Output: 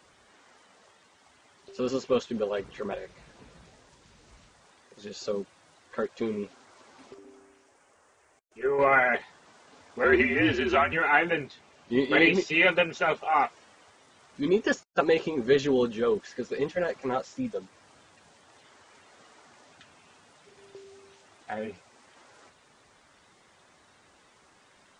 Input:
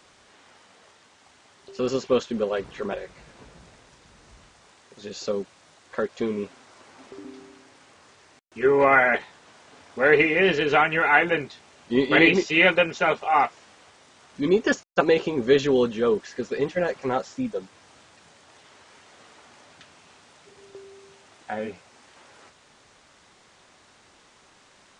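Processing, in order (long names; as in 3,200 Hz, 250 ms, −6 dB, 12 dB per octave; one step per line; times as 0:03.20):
spectral magnitudes quantised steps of 15 dB
0:07.14–0:08.79: octave-band graphic EQ 125/250/1,000/2,000/4,000 Hz −11/−8/−3/−3/−11 dB
0:10.04–0:10.93: frequency shifter −68 Hz
0:11.46–0:11.92: Bessel low-pass filter 6,900 Hz
level −3.5 dB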